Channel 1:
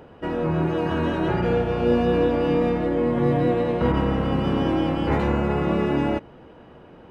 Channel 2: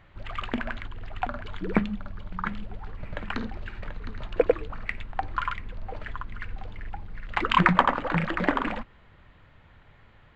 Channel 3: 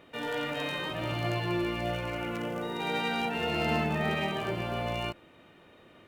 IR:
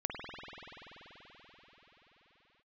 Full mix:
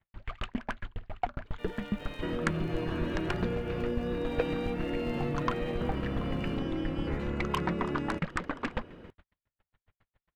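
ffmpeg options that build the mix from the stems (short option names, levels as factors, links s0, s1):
-filter_complex "[0:a]acompressor=threshold=0.0398:ratio=6,equalizer=f=830:w=1.7:g=-9,adelay=2000,volume=0.841[s0];[1:a]alimiter=limit=0.178:level=0:latency=1:release=154,aeval=exprs='0.178*(cos(1*acos(clip(val(0)/0.178,-1,1)))-cos(1*PI/2))+0.0224*(cos(3*acos(clip(val(0)/0.178,-1,1)))-cos(3*PI/2))+0.0355*(cos(5*acos(clip(val(0)/0.178,-1,1)))-cos(5*PI/2))':c=same,aeval=exprs='val(0)*pow(10,-39*if(lt(mod(7.3*n/s,1),2*abs(7.3)/1000),1-mod(7.3*n/s,1)/(2*abs(7.3)/1000),(mod(7.3*n/s,1)-2*abs(7.3)/1000)/(1-2*abs(7.3)/1000))/20)':c=same,volume=1.33[s1];[2:a]adelay=1450,volume=0.251[s2];[s0][s1][s2]amix=inputs=3:normalize=0,agate=range=0.0251:threshold=0.00316:ratio=16:detection=peak"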